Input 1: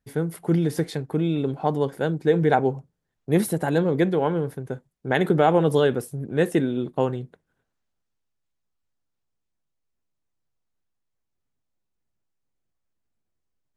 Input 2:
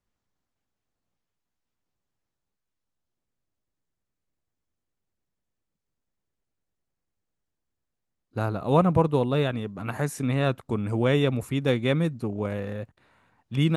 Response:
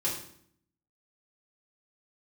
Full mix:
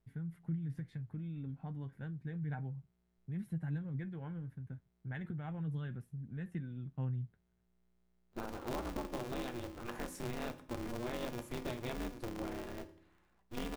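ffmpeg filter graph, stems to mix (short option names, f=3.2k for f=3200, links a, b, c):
-filter_complex "[0:a]firequalizer=gain_entry='entry(100,0);entry(400,-28);entry(1700,-14);entry(4700,-29)':delay=0.05:min_phase=1,acompressor=threshold=-33dB:ratio=6,flanger=delay=3.9:depth=7.5:regen=53:speed=0.32:shape=triangular,volume=0dB[a];[1:a]acompressor=threshold=-25dB:ratio=6,aeval=exprs='val(0)+0.000447*(sin(2*PI*60*n/s)+sin(2*PI*2*60*n/s)/2+sin(2*PI*3*60*n/s)/3+sin(2*PI*4*60*n/s)/4+sin(2*PI*5*60*n/s)/5)':c=same,aeval=exprs='val(0)*sgn(sin(2*PI*120*n/s))':c=same,volume=-13.5dB,asplit=2[b][c];[c]volume=-13dB[d];[2:a]atrim=start_sample=2205[e];[d][e]afir=irnorm=-1:irlink=0[f];[a][b][f]amix=inputs=3:normalize=0"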